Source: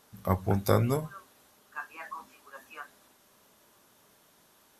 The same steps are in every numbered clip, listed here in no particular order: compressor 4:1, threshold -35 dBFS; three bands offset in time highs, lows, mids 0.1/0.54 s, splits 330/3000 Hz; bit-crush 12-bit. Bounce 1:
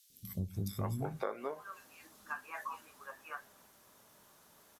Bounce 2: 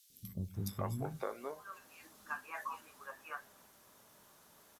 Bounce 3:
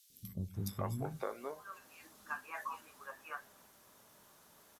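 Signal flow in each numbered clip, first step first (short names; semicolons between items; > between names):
bit-crush > three bands offset in time > compressor; compressor > bit-crush > three bands offset in time; bit-crush > compressor > three bands offset in time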